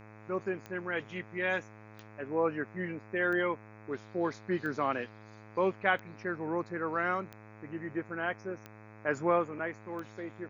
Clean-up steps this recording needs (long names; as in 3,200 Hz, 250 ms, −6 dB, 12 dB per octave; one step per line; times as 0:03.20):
click removal
hum removal 107.4 Hz, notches 24
downward expander −44 dBFS, range −21 dB